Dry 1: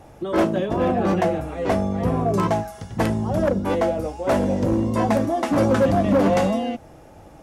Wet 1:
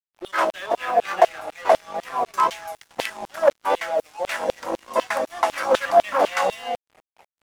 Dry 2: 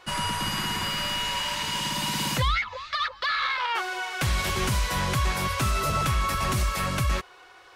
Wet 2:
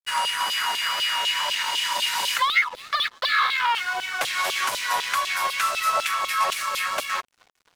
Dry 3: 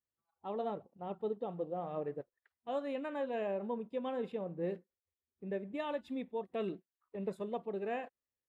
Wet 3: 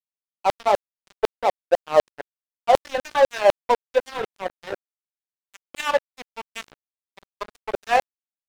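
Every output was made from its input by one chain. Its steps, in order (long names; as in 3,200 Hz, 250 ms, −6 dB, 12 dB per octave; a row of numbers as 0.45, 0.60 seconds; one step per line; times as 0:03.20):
auto-filter high-pass saw down 4 Hz 550–3,500 Hz
tape wow and flutter 22 cents
dead-zone distortion −43 dBFS
loudness normalisation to −23 LKFS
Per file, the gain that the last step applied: +2.0, +2.5, +21.0 decibels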